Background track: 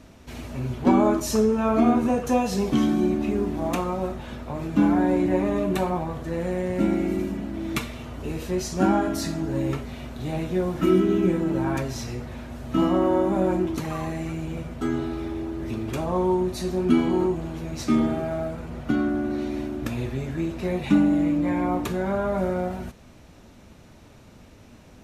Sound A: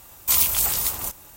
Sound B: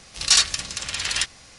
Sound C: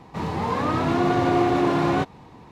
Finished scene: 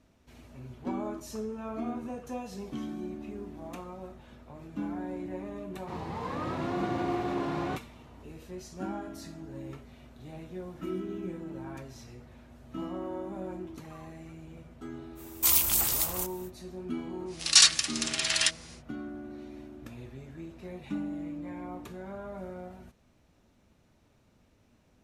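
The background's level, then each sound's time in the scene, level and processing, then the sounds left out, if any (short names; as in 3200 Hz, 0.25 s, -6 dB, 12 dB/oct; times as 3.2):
background track -16 dB
5.73 add C -11.5 dB
15.15 add A -4.5 dB, fades 0.05 s
17.25 add B -1.5 dB, fades 0.10 s + HPF 900 Hz 6 dB/oct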